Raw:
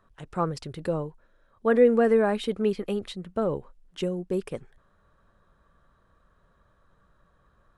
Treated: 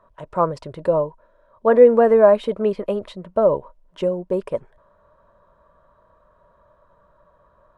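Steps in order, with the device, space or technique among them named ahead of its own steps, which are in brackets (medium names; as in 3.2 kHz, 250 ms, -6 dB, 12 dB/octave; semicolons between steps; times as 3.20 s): inside a helmet (treble shelf 4 kHz -8 dB; small resonant body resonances 610/960 Hz, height 17 dB, ringing for 30 ms); trim +1 dB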